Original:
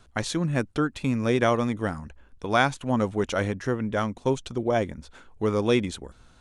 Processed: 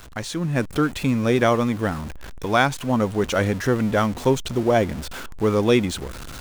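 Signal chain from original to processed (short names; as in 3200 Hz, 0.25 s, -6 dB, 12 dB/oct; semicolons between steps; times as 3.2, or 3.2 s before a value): zero-crossing step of -34.5 dBFS; AGC gain up to 10 dB; gain -3.5 dB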